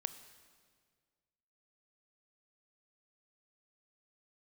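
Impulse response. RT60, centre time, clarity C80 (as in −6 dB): 1.8 s, 11 ms, 13.5 dB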